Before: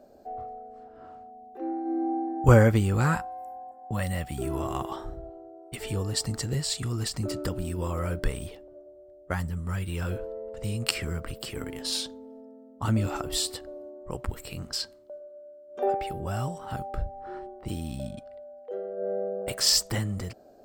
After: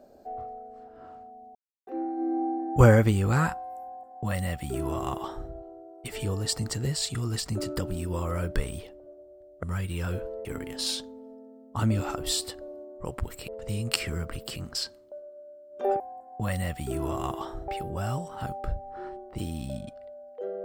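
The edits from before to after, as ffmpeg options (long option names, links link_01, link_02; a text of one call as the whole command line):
ffmpeg -i in.wav -filter_complex "[0:a]asplit=8[link_01][link_02][link_03][link_04][link_05][link_06][link_07][link_08];[link_01]atrim=end=1.55,asetpts=PTS-STARTPTS,afade=type=out:start_time=1.546:duration=0.004:curve=hsin,apad=pad_dur=0.32[link_09];[link_02]atrim=start=1.55:end=9.312,asetpts=PTS-STARTPTS,afade=type=in:duration=0.004:curve=hsin[link_10];[link_03]atrim=start=9.608:end=10.432[link_11];[link_04]atrim=start=11.508:end=14.542[link_12];[link_05]atrim=start=10.428:end=11.512[link_13];[link_06]atrim=start=14.538:end=15.982[link_14];[link_07]atrim=start=3.508:end=5.192[link_15];[link_08]atrim=start=15.978[link_16];[link_09][link_10]concat=n=2:v=0:a=1[link_17];[link_17][link_11]acrossfade=duration=0.004:curve1=hsin:curve2=hsin[link_18];[link_18][link_12]acrossfade=duration=0.004:curve1=hsin:curve2=hsin[link_19];[link_19][link_13]acrossfade=duration=0.004:curve1=hsin:curve2=hsin[link_20];[link_20][link_14]acrossfade=duration=0.004:curve1=hsin:curve2=hsin[link_21];[link_21][link_15]acrossfade=duration=0.004:curve1=hsin:curve2=hsin[link_22];[link_22][link_16]acrossfade=duration=0.004:curve1=hsin:curve2=hsin" out.wav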